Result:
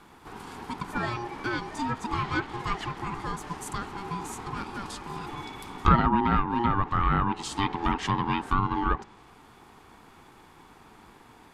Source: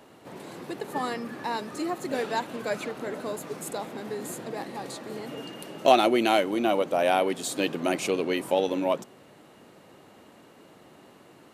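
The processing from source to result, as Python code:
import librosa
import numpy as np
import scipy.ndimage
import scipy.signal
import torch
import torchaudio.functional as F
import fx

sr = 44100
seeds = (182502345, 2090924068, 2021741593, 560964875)

y = x * np.sin(2.0 * np.pi * 590.0 * np.arange(len(x)) / sr)
y = fx.env_lowpass_down(y, sr, base_hz=1500.0, full_db=-22.0)
y = F.gain(torch.from_numpy(y), 3.0).numpy()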